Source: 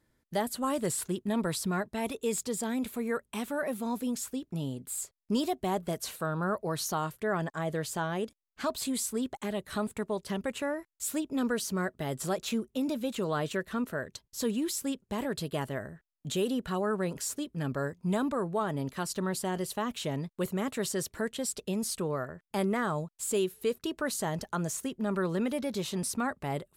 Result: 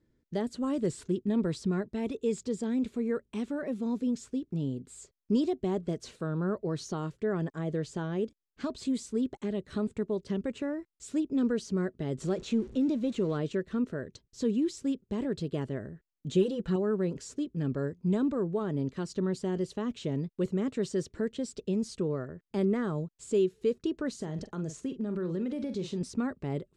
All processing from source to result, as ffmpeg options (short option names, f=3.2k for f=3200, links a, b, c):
-filter_complex "[0:a]asettb=1/sr,asplit=3[a][b][c];[a]atrim=end=12.184[d];[b]atrim=start=12.18:end=13.37,asetpts=PTS-STARTPTS,afade=t=in:d=0.004:c=qsin,afade=t=out:st=1.186:d=0.004:c=qsin,aeval=exprs='val(0)+0.5*0.0075*sgn(val(0))':c=same,bandreject=f=5k:w=18[e];[c]atrim=start=13.366[f];[d][e]acrossfade=d=0.004:c1=hsin:c2=qsin[g];[g][f]acrossfade=d=0.004:c1=qsin:c2=hsin,asettb=1/sr,asplit=3[h][i][j];[h]atrim=end=16.324[k];[i]atrim=start=16.32:end=16.76,asetpts=PTS-STARTPTS,afade=t=in:d=0.004:c=qsin,afade=t=out:st=0.436:d=0.004:c=qsin,equalizer=f=880:t=o:w=0.26:g=5,aecho=1:1:5.9:0.79,atrim=end_sample=19404[l];[j]atrim=start=16.756[m];[k][l]acrossfade=d=0.004:c1=hsin:c2=qsin[n];[n][m]acrossfade=d=0.004:c1=qsin:c2=hsin,asettb=1/sr,asplit=3[o][p][q];[o]atrim=end=24.154[r];[p]atrim=start=24.15:end=26.01,asetpts=PTS-STARTPTS,afade=t=in:d=0.004:c=qsin,afade=t=out:st=1.856:d=0.004:c=qsin,asplit=2[s][t];[t]adelay=44,volume=-11.5dB[u];[s][u]amix=inputs=2:normalize=0,atrim=end_sample=82026,acompressor=threshold=-31dB:ratio=4:attack=3.2:release=140:knee=1:detection=peak[v];[q]atrim=start=26.006[w];[r][v]acrossfade=d=0.004:c1=hsin:c2=qsin[x];[x][w]acrossfade=d=0.004:c1=qsin:c2=hsin,lowpass=f=7.2k:w=0.5412,lowpass=f=7.2k:w=1.3066,lowshelf=f=550:t=q:w=1.5:g=8.5,volume=-7dB"